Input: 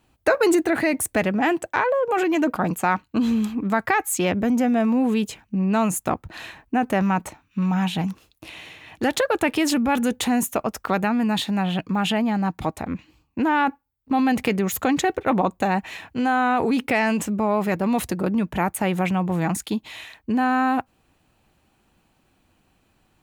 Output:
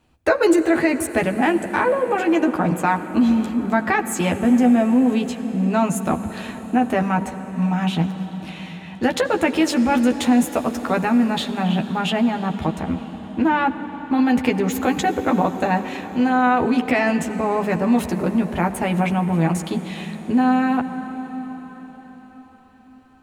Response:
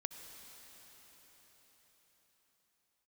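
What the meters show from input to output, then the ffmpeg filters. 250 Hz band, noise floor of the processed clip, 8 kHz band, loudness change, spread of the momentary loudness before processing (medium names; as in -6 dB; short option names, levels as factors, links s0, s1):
+3.5 dB, -44 dBFS, -2.0 dB, +2.5 dB, 9 LU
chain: -filter_complex "[0:a]highshelf=f=11000:g=-11,asplit=2[s0][s1];[1:a]atrim=start_sample=2205,lowshelf=f=460:g=7,adelay=12[s2];[s1][s2]afir=irnorm=-1:irlink=0,volume=0.708[s3];[s0][s3]amix=inputs=2:normalize=0"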